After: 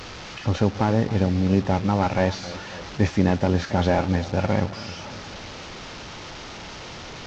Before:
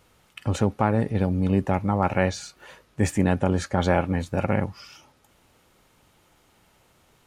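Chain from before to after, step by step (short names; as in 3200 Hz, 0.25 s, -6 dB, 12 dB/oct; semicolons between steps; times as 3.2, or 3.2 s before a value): delta modulation 32 kbps, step -33.5 dBFS; warbling echo 0.273 s, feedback 57%, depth 107 cents, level -16 dB; gain +2 dB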